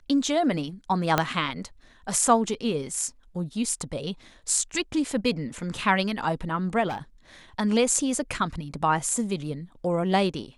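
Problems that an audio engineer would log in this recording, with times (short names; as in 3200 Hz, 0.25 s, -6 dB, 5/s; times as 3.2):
1.18 pop -6 dBFS
6.88–6.98 clipped -27.5 dBFS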